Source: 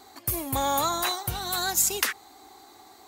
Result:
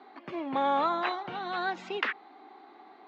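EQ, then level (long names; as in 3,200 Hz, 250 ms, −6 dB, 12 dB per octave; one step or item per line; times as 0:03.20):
Butterworth high-pass 180 Hz 36 dB per octave
low-pass filter 3,000 Hz 24 dB per octave
high-frequency loss of the air 87 metres
0.0 dB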